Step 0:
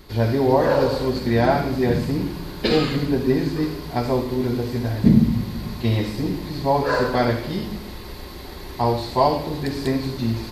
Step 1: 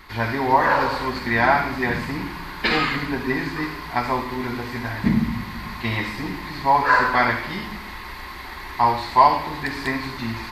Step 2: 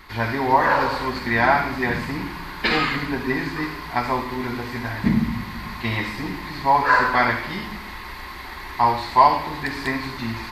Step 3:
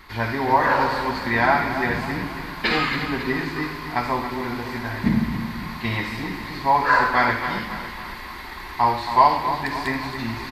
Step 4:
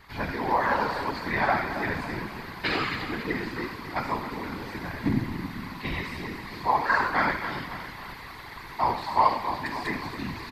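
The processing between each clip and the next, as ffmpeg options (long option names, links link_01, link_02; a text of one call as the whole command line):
ffmpeg -i in.wav -af "equalizer=frequency=125:width_type=o:width=1:gain=-5,equalizer=frequency=500:width_type=o:width=1:gain=-8,equalizer=frequency=1000:width_type=o:width=1:gain=11,equalizer=frequency=2000:width_type=o:width=1:gain=12,volume=-3dB" out.wav
ffmpeg -i in.wav -af anull out.wav
ffmpeg -i in.wav -af "aecho=1:1:274|548|822|1096|1370:0.316|0.155|0.0759|0.0372|0.0182,volume=-1dB" out.wav
ffmpeg -i in.wav -af "afftfilt=real='hypot(re,im)*cos(2*PI*random(0))':imag='hypot(re,im)*sin(2*PI*random(1))':win_size=512:overlap=0.75" out.wav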